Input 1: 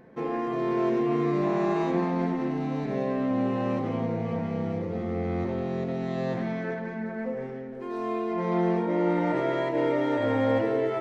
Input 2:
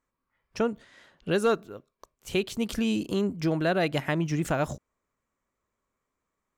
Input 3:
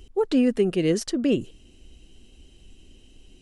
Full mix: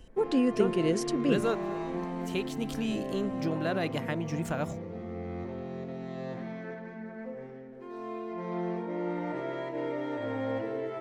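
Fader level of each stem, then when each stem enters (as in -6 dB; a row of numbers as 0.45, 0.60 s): -8.5, -6.0, -5.5 dB; 0.00, 0.00, 0.00 s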